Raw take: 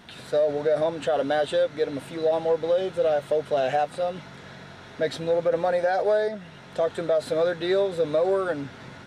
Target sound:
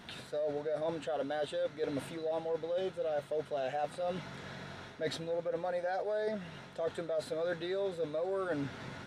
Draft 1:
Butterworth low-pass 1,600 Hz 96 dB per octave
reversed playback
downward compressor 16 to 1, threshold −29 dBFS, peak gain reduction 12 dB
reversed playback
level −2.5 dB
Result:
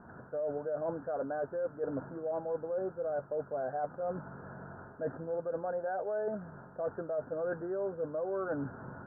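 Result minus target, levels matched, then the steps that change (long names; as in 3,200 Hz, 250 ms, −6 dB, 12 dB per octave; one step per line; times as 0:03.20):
2,000 Hz band −3.5 dB
remove: Butterworth low-pass 1,600 Hz 96 dB per octave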